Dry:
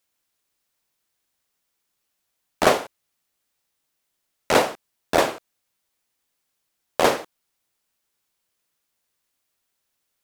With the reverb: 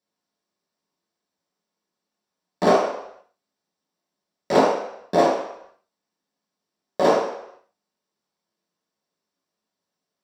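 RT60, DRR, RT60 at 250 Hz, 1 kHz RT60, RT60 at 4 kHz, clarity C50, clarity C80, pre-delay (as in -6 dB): 0.75 s, -6.5 dB, 0.55 s, 0.80 s, 0.70 s, 2.5 dB, 6.0 dB, 3 ms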